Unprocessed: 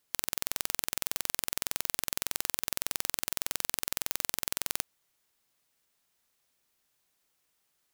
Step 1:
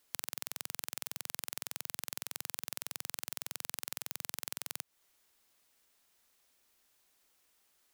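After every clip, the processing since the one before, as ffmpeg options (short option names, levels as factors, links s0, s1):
-af "equalizer=f=140:t=o:w=0.42:g=-13,acompressor=threshold=0.0158:ratio=6,volume=1.5"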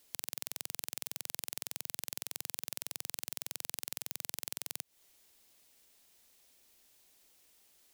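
-af "alimiter=limit=0.168:level=0:latency=1:release=193,equalizer=f=1300:t=o:w=1.2:g=-7,volume=2.11"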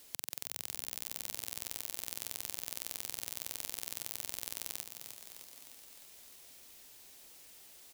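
-filter_complex "[0:a]acompressor=threshold=0.00316:ratio=2,asplit=2[s0][s1];[s1]asplit=8[s2][s3][s4][s5][s6][s7][s8][s9];[s2]adelay=305,afreqshift=64,volume=0.422[s10];[s3]adelay=610,afreqshift=128,volume=0.26[s11];[s4]adelay=915,afreqshift=192,volume=0.162[s12];[s5]adelay=1220,afreqshift=256,volume=0.1[s13];[s6]adelay=1525,afreqshift=320,volume=0.0624[s14];[s7]adelay=1830,afreqshift=384,volume=0.0385[s15];[s8]adelay=2135,afreqshift=448,volume=0.024[s16];[s9]adelay=2440,afreqshift=512,volume=0.0148[s17];[s10][s11][s12][s13][s14][s15][s16][s17]amix=inputs=8:normalize=0[s18];[s0][s18]amix=inputs=2:normalize=0,volume=2.82"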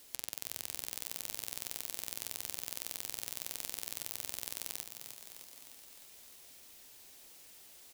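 -af "flanger=delay=7.5:depth=5.6:regen=-82:speed=0.57:shape=sinusoidal,volume=1.68"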